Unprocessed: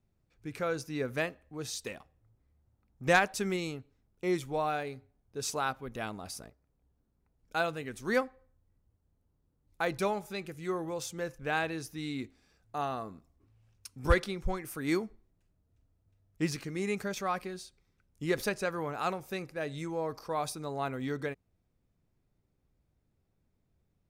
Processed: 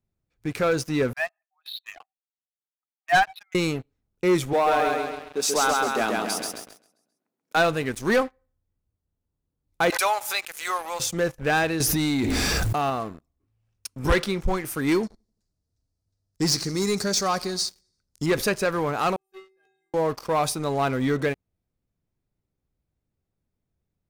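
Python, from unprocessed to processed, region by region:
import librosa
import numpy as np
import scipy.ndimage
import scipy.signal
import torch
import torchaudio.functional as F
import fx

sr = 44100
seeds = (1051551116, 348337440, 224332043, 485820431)

y = fx.chain(x, sr, fx.spec_expand(power=1.9),
    fx.brickwall_bandpass(low_hz=650.0, high_hz=4400.0), at=(1.13, 3.55))
y = fx.chain(y, sr, fx.highpass(hz=210.0, slope=24),
    fx.echo_feedback(ms=133, feedback_pct=48, wet_db=-3), at=(4.53, 7.57))
y = fx.chain(y, sr, fx.highpass(hz=700.0, slope=24),
    fx.high_shelf(hz=6800.0, db=7.5),
    fx.pre_swell(db_per_s=76.0), at=(9.9, 11.0))
y = fx.chain(y, sr, fx.high_shelf(hz=6000.0, db=5.5),
    fx.env_flatten(amount_pct=100), at=(11.8, 12.9))
y = fx.chain(y, sr, fx.lowpass(hz=10000.0, slope=12),
    fx.high_shelf_res(hz=3600.0, db=8.5, q=3.0),
    fx.echo_feedback(ms=85, feedback_pct=56, wet_db=-22), at=(15.03, 18.26))
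y = fx.chain(y, sr, fx.level_steps(step_db=12),
    fx.stiff_resonator(f0_hz=380.0, decay_s=0.81, stiffness=0.008), at=(19.16, 19.94))
y = fx.leveller(y, sr, passes=3)
y = fx.rider(y, sr, range_db=10, speed_s=2.0)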